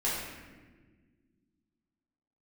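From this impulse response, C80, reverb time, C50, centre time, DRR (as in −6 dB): 2.5 dB, 1.5 s, 0.0 dB, 81 ms, −8.0 dB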